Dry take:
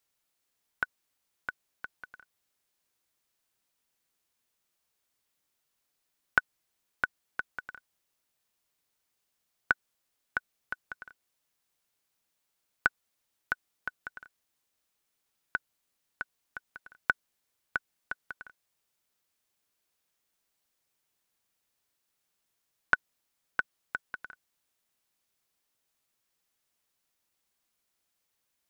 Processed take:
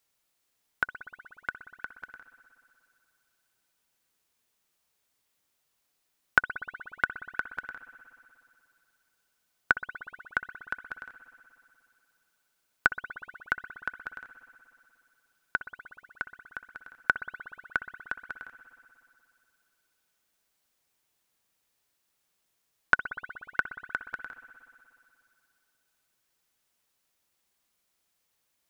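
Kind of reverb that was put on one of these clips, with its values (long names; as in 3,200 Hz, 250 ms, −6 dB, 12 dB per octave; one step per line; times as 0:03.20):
spring reverb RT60 2.6 s, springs 60 ms, chirp 75 ms, DRR 10 dB
level +3 dB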